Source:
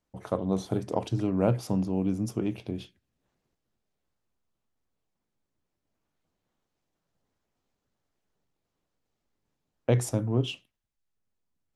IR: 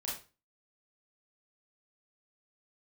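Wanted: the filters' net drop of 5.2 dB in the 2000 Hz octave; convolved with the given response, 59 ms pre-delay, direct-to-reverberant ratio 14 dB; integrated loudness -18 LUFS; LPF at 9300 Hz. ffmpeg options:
-filter_complex "[0:a]lowpass=9.3k,equalizer=f=2k:t=o:g=-7.5,asplit=2[a][b];[1:a]atrim=start_sample=2205,adelay=59[c];[b][c]afir=irnorm=-1:irlink=0,volume=-15.5dB[d];[a][d]amix=inputs=2:normalize=0,volume=11.5dB"

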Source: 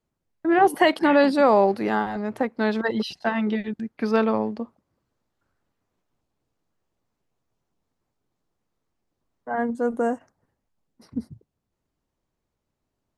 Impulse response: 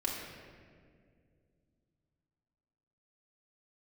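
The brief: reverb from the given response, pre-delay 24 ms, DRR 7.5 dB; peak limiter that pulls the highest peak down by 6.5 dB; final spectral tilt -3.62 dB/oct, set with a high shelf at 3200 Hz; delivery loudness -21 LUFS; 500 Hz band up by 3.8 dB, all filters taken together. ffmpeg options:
-filter_complex "[0:a]equalizer=f=500:t=o:g=4.5,highshelf=f=3.2k:g=8,alimiter=limit=-9dB:level=0:latency=1,asplit=2[a][b];[1:a]atrim=start_sample=2205,adelay=24[c];[b][c]afir=irnorm=-1:irlink=0,volume=-12dB[d];[a][d]amix=inputs=2:normalize=0,volume=0.5dB"

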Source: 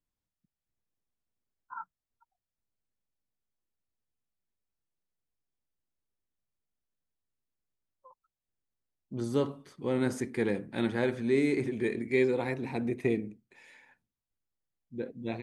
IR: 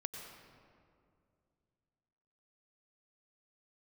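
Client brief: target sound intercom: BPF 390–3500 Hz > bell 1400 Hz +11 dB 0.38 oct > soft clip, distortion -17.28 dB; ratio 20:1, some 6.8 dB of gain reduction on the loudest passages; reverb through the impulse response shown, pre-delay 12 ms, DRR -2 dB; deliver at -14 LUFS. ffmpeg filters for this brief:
-filter_complex "[0:a]acompressor=threshold=-28dB:ratio=20,asplit=2[a][b];[1:a]atrim=start_sample=2205,adelay=12[c];[b][c]afir=irnorm=-1:irlink=0,volume=3dB[d];[a][d]amix=inputs=2:normalize=0,highpass=390,lowpass=3.5k,equalizer=f=1.4k:t=o:w=0.38:g=11,asoftclip=threshold=-25.5dB,volume=22dB"

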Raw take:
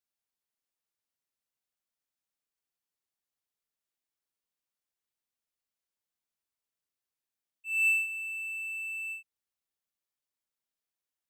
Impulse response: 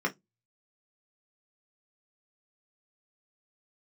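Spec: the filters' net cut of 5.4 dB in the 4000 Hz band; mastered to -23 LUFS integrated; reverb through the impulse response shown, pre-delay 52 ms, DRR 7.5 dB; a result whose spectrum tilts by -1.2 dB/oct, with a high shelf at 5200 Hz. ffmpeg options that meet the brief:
-filter_complex "[0:a]equalizer=f=4k:t=o:g=-6.5,highshelf=f=5.2k:g=-5.5,asplit=2[a][b];[1:a]atrim=start_sample=2205,adelay=52[c];[b][c]afir=irnorm=-1:irlink=0,volume=-16dB[d];[a][d]amix=inputs=2:normalize=0,volume=14dB"

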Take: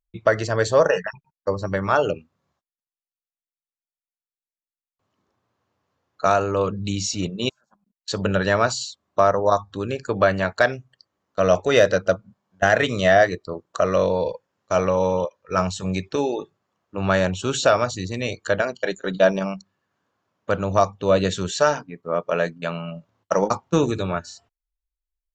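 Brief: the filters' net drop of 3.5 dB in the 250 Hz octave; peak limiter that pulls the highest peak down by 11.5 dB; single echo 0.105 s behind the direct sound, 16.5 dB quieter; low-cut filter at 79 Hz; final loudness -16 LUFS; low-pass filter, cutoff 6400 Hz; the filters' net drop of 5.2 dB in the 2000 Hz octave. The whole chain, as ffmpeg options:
-af "highpass=79,lowpass=6.4k,equalizer=f=250:t=o:g=-5,equalizer=f=2k:t=o:g=-7,alimiter=limit=-17dB:level=0:latency=1,aecho=1:1:105:0.15,volume=13dB"

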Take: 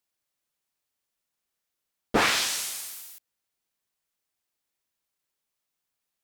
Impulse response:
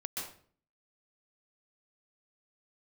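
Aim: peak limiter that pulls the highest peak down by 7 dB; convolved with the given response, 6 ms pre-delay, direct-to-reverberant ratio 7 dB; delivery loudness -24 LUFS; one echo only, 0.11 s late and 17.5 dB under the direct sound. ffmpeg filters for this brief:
-filter_complex "[0:a]alimiter=limit=-17dB:level=0:latency=1,aecho=1:1:110:0.133,asplit=2[a][b];[1:a]atrim=start_sample=2205,adelay=6[c];[b][c]afir=irnorm=-1:irlink=0,volume=-8.5dB[d];[a][d]amix=inputs=2:normalize=0,volume=4dB"

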